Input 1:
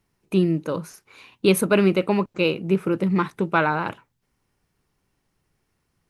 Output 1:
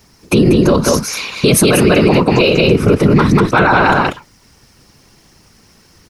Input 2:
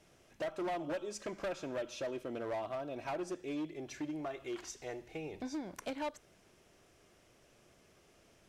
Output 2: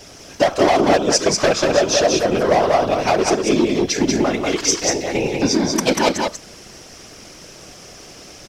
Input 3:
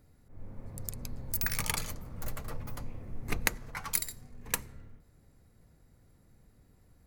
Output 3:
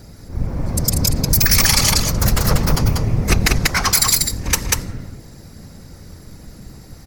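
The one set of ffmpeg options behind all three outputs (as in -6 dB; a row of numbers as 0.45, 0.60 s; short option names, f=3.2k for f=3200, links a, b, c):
-af "equalizer=f=5.3k:t=o:w=0.73:g=11,acompressor=threshold=-33dB:ratio=1.5,afftfilt=real='hypot(re,im)*cos(2*PI*random(0))':imag='hypot(re,im)*sin(2*PI*random(1))':win_size=512:overlap=0.75,aecho=1:1:190:0.668,alimiter=level_in=28.5dB:limit=-1dB:release=50:level=0:latency=1,volume=-1dB"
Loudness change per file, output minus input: +10.5, +23.5, +19.5 LU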